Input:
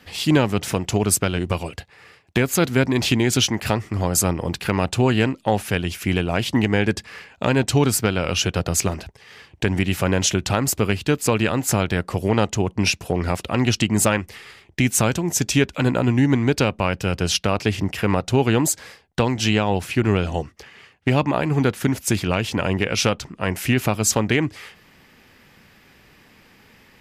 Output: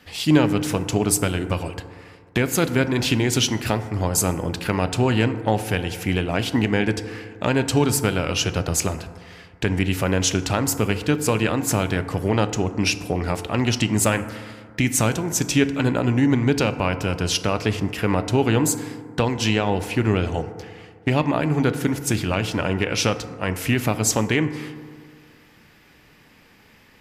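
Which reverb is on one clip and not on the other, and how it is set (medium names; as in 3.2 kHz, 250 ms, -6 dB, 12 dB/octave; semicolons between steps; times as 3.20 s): FDN reverb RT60 2 s, low-frequency decay 1×, high-frequency decay 0.3×, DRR 10 dB; trim -1.5 dB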